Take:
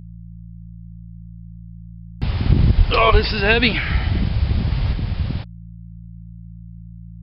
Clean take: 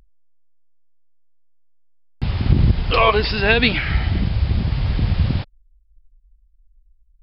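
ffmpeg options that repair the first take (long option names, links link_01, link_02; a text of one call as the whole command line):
ffmpeg -i in.wav -filter_complex "[0:a]bandreject=frequency=56.6:width_type=h:width=4,bandreject=frequency=113.2:width_type=h:width=4,bandreject=frequency=169.8:width_type=h:width=4,asplit=3[link_01][link_02][link_03];[link_01]afade=type=out:start_time=2.77:duration=0.02[link_04];[link_02]highpass=frequency=140:width=0.5412,highpass=frequency=140:width=1.3066,afade=type=in:start_time=2.77:duration=0.02,afade=type=out:start_time=2.89:duration=0.02[link_05];[link_03]afade=type=in:start_time=2.89:duration=0.02[link_06];[link_04][link_05][link_06]amix=inputs=3:normalize=0,asplit=3[link_07][link_08][link_09];[link_07]afade=type=out:start_time=3.11:duration=0.02[link_10];[link_08]highpass=frequency=140:width=0.5412,highpass=frequency=140:width=1.3066,afade=type=in:start_time=3.11:duration=0.02,afade=type=out:start_time=3.23:duration=0.02[link_11];[link_09]afade=type=in:start_time=3.23:duration=0.02[link_12];[link_10][link_11][link_12]amix=inputs=3:normalize=0,asetnsamples=nb_out_samples=441:pad=0,asendcmd='4.93 volume volume 4.5dB',volume=0dB" out.wav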